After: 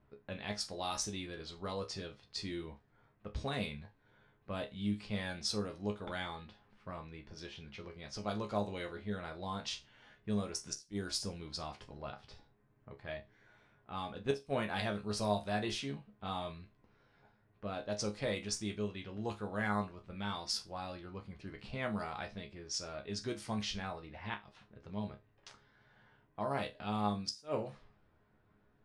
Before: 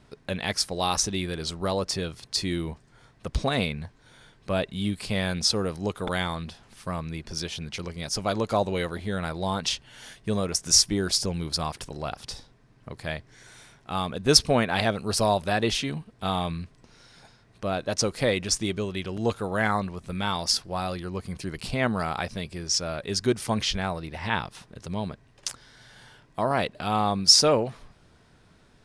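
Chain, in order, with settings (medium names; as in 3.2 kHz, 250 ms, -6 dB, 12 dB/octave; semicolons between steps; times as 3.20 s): level-controlled noise filter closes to 1.8 kHz, open at -19.5 dBFS; inverted gate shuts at -9 dBFS, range -28 dB; chord resonator C#2 fifth, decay 0.22 s; trim -3.5 dB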